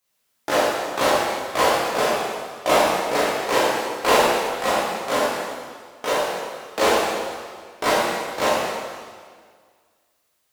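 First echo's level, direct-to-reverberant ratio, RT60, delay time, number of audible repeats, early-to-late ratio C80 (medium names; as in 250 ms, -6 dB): no echo, -10.0 dB, 1.8 s, no echo, no echo, -0.5 dB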